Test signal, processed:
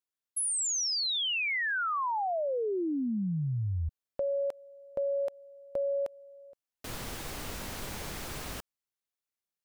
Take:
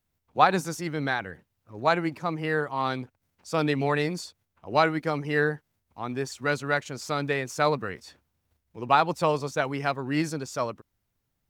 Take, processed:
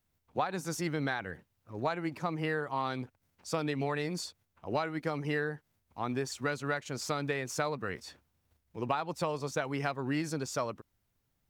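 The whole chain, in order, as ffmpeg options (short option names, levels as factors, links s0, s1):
-af "acompressor=threshold=0.0398:ratio=12"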